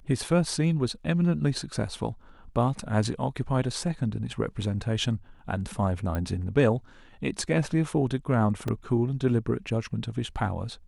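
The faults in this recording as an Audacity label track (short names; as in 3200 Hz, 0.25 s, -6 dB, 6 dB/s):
6.150000	6.150000	pop -18 dBFS
8.680000	8.680000	gap 3.3 ms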